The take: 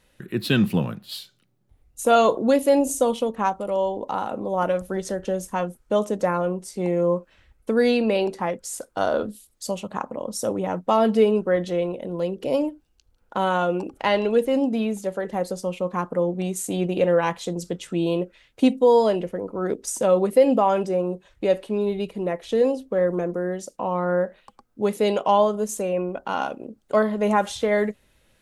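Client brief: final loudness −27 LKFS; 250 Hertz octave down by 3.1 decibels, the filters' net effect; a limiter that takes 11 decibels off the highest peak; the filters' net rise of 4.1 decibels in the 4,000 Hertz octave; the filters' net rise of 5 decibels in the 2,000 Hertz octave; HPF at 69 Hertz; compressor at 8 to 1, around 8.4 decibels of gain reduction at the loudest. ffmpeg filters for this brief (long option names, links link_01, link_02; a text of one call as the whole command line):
ffmpeg -i in.wav -af "highpass=69,equalizer=frequency=250:width_type=o:gain=-4,equalizer=frequency=2000:width_type=o:gain=6,equalizer=frequency=4000:width_type=o:gain=3,acompressor=threshold=-21dB:ratio=8,volume=3dB,alimiter=limit=-16dB:level=0:latency=1" out.wav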